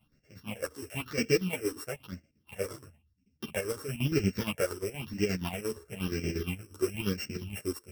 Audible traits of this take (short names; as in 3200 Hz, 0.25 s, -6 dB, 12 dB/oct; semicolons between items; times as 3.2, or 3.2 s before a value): a buzz of ramps at a fixed pitch in blocks of 16 samples; phasing stages 6, 1 Hz, lowest notch 180–1000 Hz; chopped level 8.5 Hz, depth 65%, duty 55%; a shimmering, thickened sound